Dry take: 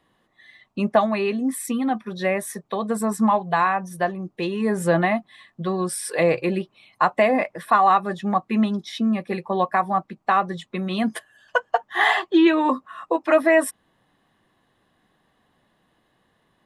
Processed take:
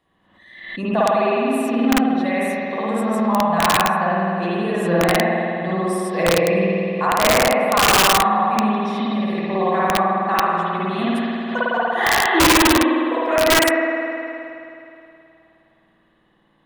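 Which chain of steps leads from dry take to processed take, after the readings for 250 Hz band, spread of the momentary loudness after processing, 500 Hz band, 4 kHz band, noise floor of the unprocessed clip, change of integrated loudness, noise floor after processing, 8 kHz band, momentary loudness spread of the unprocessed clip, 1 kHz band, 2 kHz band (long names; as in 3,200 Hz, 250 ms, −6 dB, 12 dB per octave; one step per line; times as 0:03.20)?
+3.0 dB, 9 LU, +3.5 dB, +12.0 dB, −67 dBFS, +4.0 dB, −60 dBFS, +10.0 dB, 10 LU, +3.5 dB, +5.5 dB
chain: spring reverb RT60 2.8 s, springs 52 ms, chirp 35 ms, DRR −10 dB
wrap-around overflow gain 1.5 dB
background raised ahead of every attack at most 62 dB per second
level −6.5 dB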